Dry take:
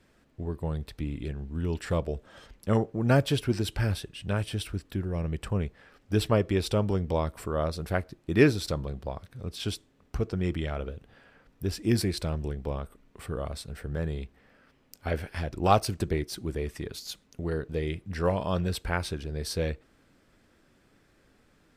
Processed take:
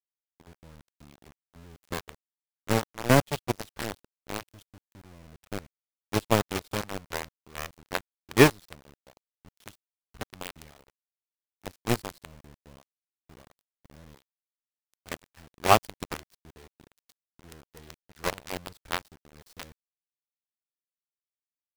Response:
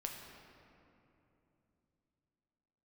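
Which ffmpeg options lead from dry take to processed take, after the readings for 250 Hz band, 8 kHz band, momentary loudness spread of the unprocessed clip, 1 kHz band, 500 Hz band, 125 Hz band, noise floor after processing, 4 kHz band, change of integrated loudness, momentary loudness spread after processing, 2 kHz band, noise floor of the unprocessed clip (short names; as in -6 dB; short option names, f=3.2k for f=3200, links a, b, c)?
-3.0 dB, +3.0 dB, 14 LU, +2.0 dB, -2.0 dB, -6.5 dB, under -85 dBFS, +0.5 dB, +1.5 dB, 20 LU, +3.0 dB, -65 dBFS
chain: -af "acrusher=bits=4:mix=0:aa=0.000001,aeval=exprs='0.473*(cos(1*acos(clip(val(0)/0.473,-1,1)))-cos(1*PI/2))+0.00668*(cos(4*acos(clip(val(0)/0.473,-1,1)))-cos(4*PI/2))+0.00668*(cos(6*acos(clip(val(0)/0.473,-1,1)))-cos(6*PI/2))+0.0841*(cos(7*acos(clip(val(0)/0.473,-1,1)))-cos(7*PI/2))':c=same,volume=3dB"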